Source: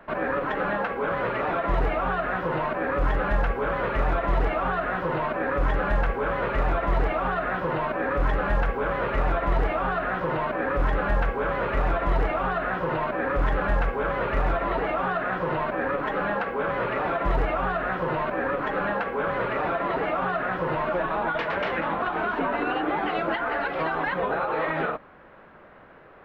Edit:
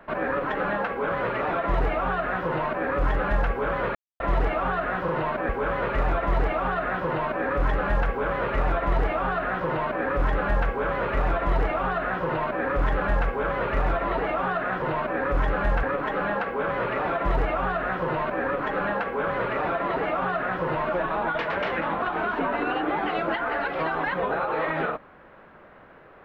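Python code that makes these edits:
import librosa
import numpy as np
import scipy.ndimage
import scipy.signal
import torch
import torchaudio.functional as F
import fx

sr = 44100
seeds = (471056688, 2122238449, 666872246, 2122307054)

y = fx.edit(x, sr, fx.silence(start_s=3.95, length_s=0.25),
    fx.swap(start_s=5.08, length_s=1.01, other_s=15.42, other_length_s=0.41), tone=tone)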